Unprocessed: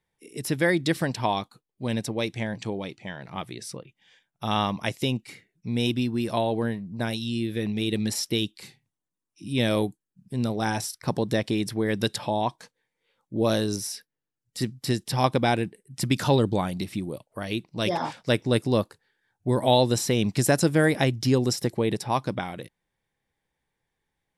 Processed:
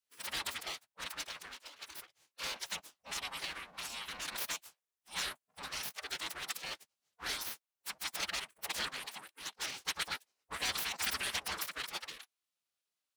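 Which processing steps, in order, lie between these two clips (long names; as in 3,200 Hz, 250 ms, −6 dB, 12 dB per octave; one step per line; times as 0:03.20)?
full-wave rectification
phase-vocoder stretch with locked phases 0.54×
gate on every frequency bin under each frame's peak −30 dB weak
level +1 dB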